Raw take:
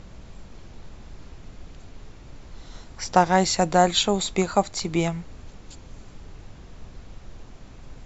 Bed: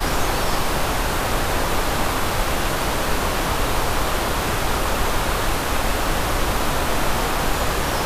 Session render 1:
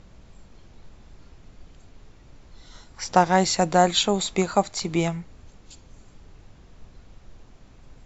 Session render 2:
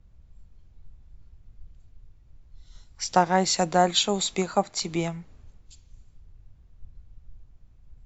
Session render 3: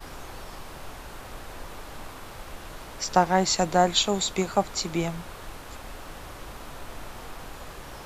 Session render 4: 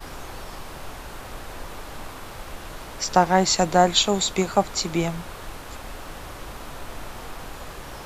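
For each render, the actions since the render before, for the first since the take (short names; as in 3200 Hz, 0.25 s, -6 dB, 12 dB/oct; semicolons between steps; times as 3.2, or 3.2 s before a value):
noise print and reduce 6 dB
compressor 1.5:1, threshold -35 dBFS, peak gain reduction 8.5 dB; three-band expander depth 70%
add bed -20 dB
gain +3.5 dB; limiter -3 dBFS, peak gain reduction 1 dB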